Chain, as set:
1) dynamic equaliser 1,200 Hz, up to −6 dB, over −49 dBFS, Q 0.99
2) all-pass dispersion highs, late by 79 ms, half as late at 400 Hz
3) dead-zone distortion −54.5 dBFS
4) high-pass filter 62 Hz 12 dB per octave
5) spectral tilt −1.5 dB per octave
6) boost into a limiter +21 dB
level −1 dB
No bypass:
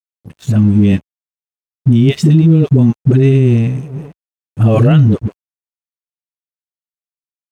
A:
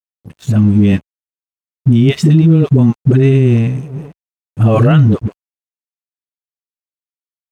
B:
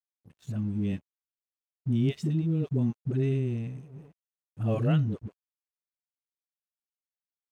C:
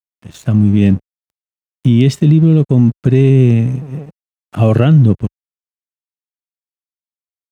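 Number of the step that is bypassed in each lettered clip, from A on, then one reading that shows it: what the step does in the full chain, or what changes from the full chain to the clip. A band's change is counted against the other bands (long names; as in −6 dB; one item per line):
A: 1, 1 kHz band +3.0 dB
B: 6, change in crest factor +5.5 dB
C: 2, change in momentary loudness spread +2 LU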